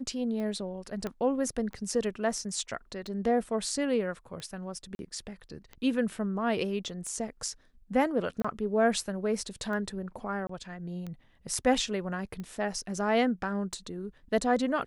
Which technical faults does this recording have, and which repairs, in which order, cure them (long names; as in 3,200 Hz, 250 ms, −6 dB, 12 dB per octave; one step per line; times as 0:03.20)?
scratch tick 45 rpm −27 dBFS
0:01.07: click −21 dBFS
0:04.95–0:04.99: drop-out 41 ms
0:08.42–0:08.45: drop-out 25 ms
0:10.47–0:10.49: drop-out 24 ms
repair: click removal
repair the gap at 0:04.95, 41 ms
repair the gap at 0:08.42, 25 ms
repair the gap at 0:10.47, 24 ms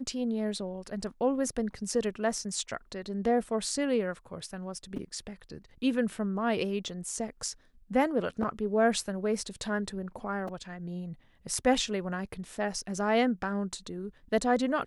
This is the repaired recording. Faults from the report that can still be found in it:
0:01.07: click